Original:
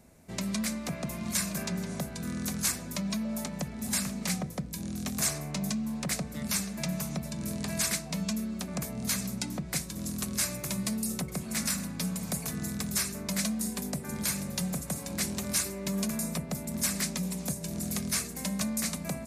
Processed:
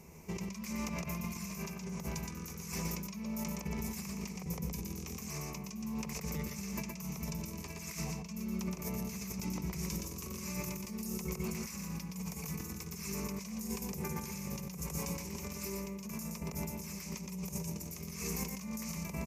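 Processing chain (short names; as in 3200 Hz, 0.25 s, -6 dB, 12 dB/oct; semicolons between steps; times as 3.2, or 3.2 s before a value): ripple EQ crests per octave 0.78, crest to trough 12 dB; negative-ratio compressor -38 dBFS, ratio -1; on a send: echo 0.119 s -4 dB; on the sum: gain -4 dB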